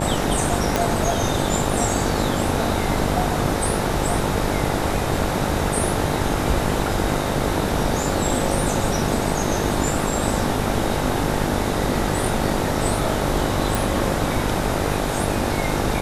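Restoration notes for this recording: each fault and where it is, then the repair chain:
buzz 50 Hz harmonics 18 -26 dBFS
0.76 pop -4 dBFS
13.75 pop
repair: de-click; de-hum 50 Hz, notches 18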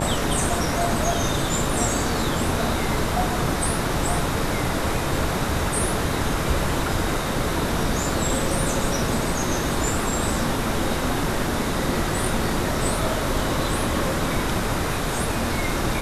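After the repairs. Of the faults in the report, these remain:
0.76 pop

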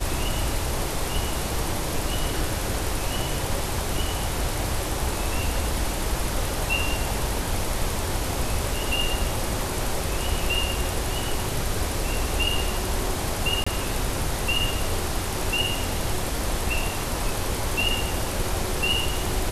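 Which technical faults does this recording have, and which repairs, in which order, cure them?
13.64–13.66 gap 25 ms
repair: interpolate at 13.64, 25 ms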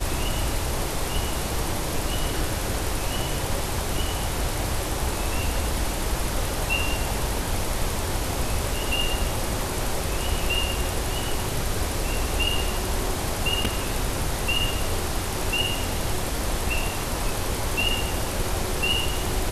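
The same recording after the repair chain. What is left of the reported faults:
none

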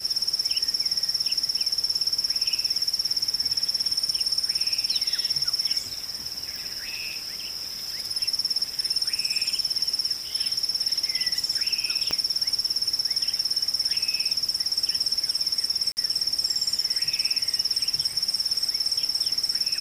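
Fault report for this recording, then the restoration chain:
6.56 pop
12.11 pop -12 dBFS
15.92–15.97 gap 49 ms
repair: de-click; interpolate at 15.92, 49 ms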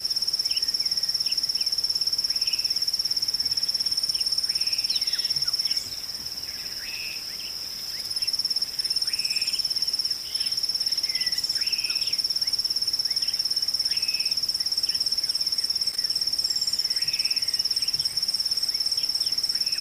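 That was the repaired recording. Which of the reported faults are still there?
12.11 pop

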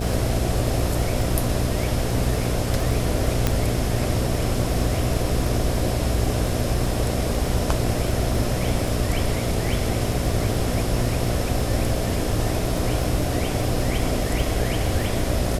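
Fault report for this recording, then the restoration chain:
buzz 60 Hz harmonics 12 -27 dBFS
crackle 29/s -28 dBFS
3.47 pop -5 dBFS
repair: de-click; de-hum 60 Hz, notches 12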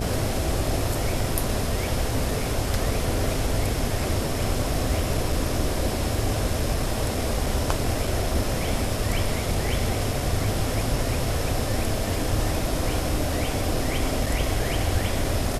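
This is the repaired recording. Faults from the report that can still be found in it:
none

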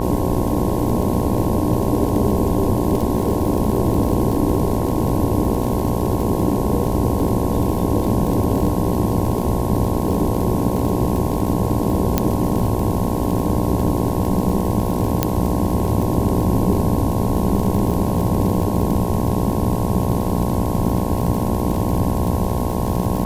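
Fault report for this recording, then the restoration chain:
buzz 60 Hz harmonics 18 -23 dBFS
crackle 45/s -23 dBFS
12.18 pop -1 dBFS
15.23 pop -1 dBFS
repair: de-click; de-hum 60 Hz, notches 18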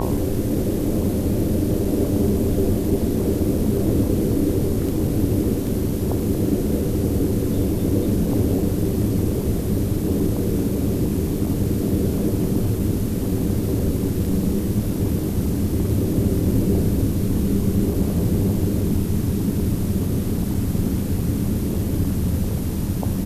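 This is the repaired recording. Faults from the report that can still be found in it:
none

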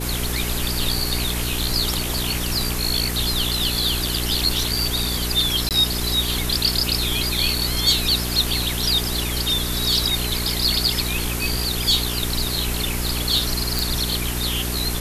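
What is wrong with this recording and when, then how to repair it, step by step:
hum 60 Hz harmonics 7 -27 dBFS
5.69–5.71 gap 18 ms
13.79 pop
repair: de-click; de-hum 60 Hz, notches 7; interpolate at 5.69, 18 ms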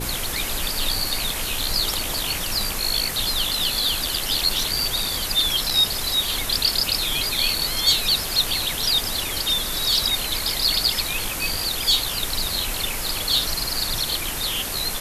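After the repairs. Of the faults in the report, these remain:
none

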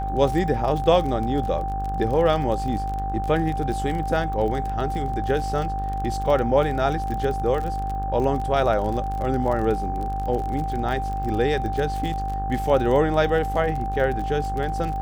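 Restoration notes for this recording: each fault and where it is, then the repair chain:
buzz 50 Hz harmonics 35 -29 dBFS
crackle 33/s -28 dBFS
tone 780 Hz -27 dBFS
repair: de-click; de-hum 50 Hz, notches 35; notch 780 Hz, Q 30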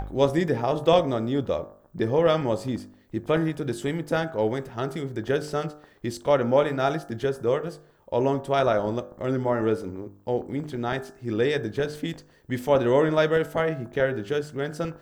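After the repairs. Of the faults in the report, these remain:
none

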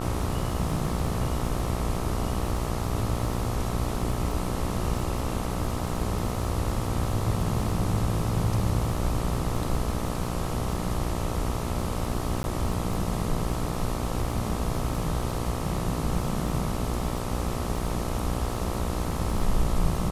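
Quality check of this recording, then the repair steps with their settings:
buzz 60 Hz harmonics 22 -32 dBFS
crackle 41/s -34 dBFS
12.43–12.44 gap 11 ms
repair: de-click; de-hum 60 Hz, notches 22; interpolate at 12.43, 11 ms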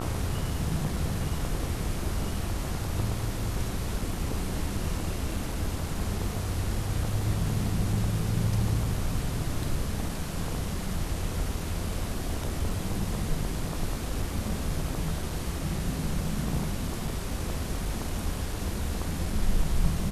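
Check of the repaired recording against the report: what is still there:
none

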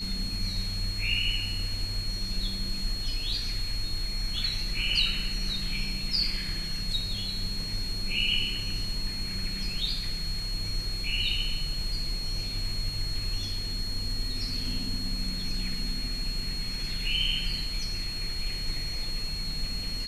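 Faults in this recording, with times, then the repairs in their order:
tone 4300 Hz -34 dBFS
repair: notch 4300 Hz, Q 30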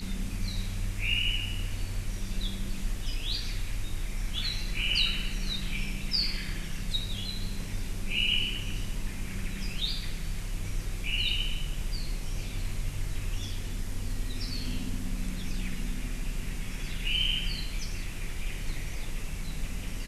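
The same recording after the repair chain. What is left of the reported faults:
none

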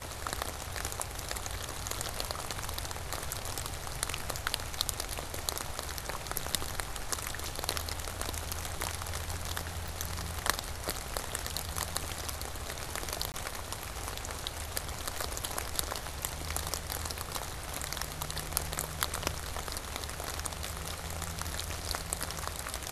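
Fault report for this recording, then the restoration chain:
9.88 pop
13.32–13.34 gap 19 ms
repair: de-click; interpolate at 13.32, 19 ms

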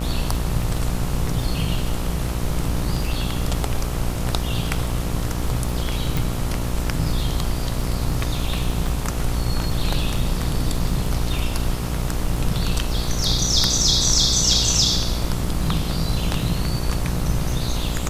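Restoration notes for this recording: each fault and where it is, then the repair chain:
buzz 60 Hz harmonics 23 -26 dBFS
crackle 28/s -29 dBFS
6.17 pop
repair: de-click; de-hum 60 Hz, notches 23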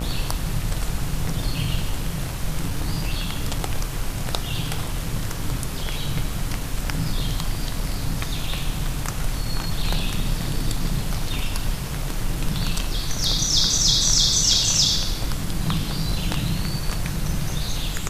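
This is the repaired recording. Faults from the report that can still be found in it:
none

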